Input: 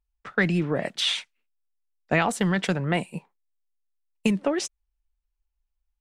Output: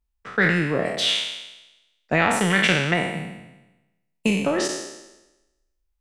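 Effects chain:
peak hold with a decay on every bin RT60 1.01 s
0:02.50–0:02.94: parametric band 2,400 Hz +10 dB 1.1 octaves

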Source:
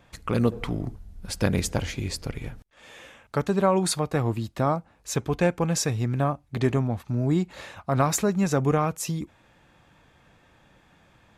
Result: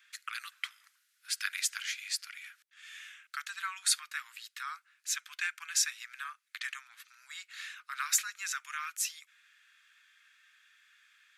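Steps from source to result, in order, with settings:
Butterworth high-pass 1,400 Hz 48 dB per octave

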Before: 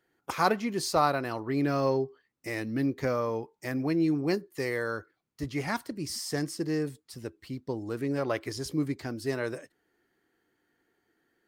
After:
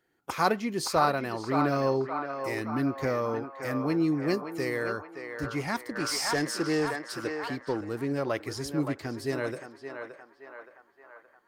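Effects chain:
feedback echo with a band-pass in the loop 571 ms, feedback 65%, band-pass 1,100 Hz, level −4.5 dB
0:05.95–0:07.81: mid-hump overdrive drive 16 dB, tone 4,800 Hz, clips at −17.5 dBFS

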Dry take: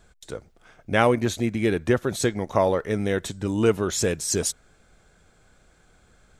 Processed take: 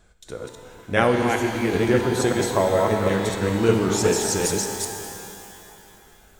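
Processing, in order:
delay that plays each chunk backwards 194 ms, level −1 dB
0:01.22–0:01.73: phaser with its sweep stopped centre 820 Hz, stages 8
reverb with rising layers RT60 2.8 s, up +12 semitones, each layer −8 dB, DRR 4.5 dB
level −1 dB

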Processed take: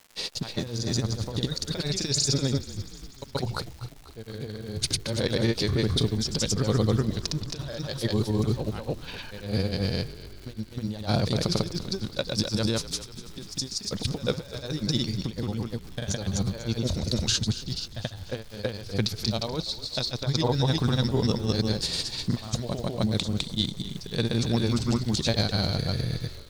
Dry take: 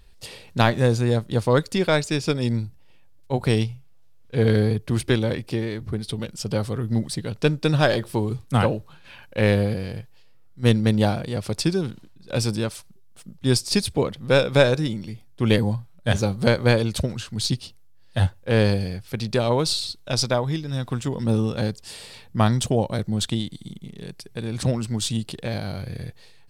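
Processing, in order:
flat-topped bell 5,000 Hz +10.5 dB 1.1 octaves
noise gate with hold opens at −35 dBFS
compressor whose output falls as the input rises −25 dBFS, ratio −0.5
granular cloud 100 ms, spray 214 ms, pitch spread up and down by 0 semitones
surface crackle 300 per second −39 dBFS
echo with shifted repeats 245 ms, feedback 61%, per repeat −47 Hz, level −15.5 dB

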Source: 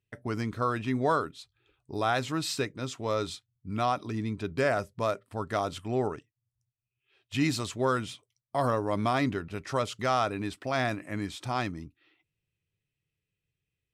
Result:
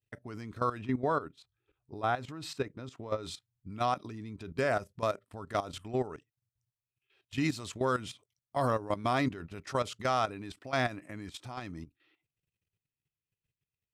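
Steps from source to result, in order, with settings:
0:00.81–0:03.23: high-shelf EQ 2,700 Hz −11 dB
output level in coarse steps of 14 dB

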